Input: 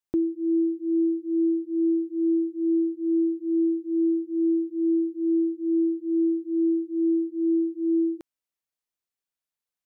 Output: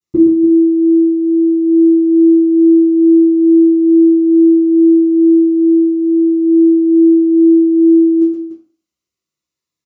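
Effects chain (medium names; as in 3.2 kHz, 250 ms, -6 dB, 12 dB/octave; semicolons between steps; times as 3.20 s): loudspeakers at several distances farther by 41 m -6 dB, 100 m -11 dB; reverberation RT60 0.45 s, pre-delay 3 ms, DRR -20.5 dB; Shepard-style phaser falling 0.21 Hz; trim -8.5 dB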